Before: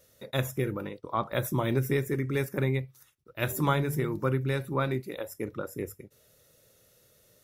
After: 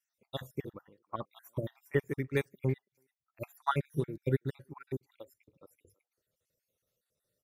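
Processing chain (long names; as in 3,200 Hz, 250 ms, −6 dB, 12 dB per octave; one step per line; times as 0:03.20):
time-frequency cells dropped at random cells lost 52%
far-end echo of a speakerphone 330 ms, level −21 dB
expander for the loud parts 2.5 to 1, over −39 dBFS
level +2 dB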